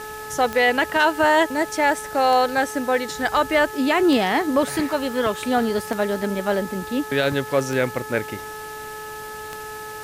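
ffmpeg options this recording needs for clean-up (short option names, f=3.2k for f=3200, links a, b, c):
-af "adeclick=t=4,bandreject=f=429.4:t=h:w=4,bandreject=f=858.8:t=h:w=4,bandreject=f=1.2882k:t=h:w=4,bandreject=f=1.7176k:t=h:w=4,afwtdn=0.0079"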